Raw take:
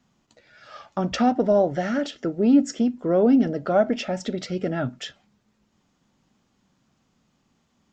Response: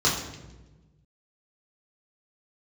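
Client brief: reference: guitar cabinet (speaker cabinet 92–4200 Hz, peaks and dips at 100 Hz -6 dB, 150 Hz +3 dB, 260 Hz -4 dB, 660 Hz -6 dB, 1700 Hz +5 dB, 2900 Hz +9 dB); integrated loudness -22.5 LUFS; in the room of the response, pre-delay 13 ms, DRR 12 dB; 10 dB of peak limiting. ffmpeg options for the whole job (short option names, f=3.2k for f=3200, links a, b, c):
-filter_complex "[0:a]alimiter=limit=-18dB:level=0:latency=1,asplit=2[a][b];[1:a]atrim=start_sample=2205,adelay=13[c];[b][c]afir=irnorm=-1:irlink=0,volume=-27dB[d];[a][d]amix=inputs=2:normalize=0,highpass=92,equalizer=f=100:t=q:w=4:g=-6,equalizer=f=150:t=q:w=4:g=3,equalizer=f=260:t=q:w=4:g=-4,equalizer=f=660:t=q:w=4:g=-6,equalizer=f=1.7k:t=q:w=4:g=5,equalizer=f=2.9k:t=q:w=4:g=9,lowpass=f=4.2k:w=0.5412,lowpass=f=4.2k:w=1.3066,volume=6dB"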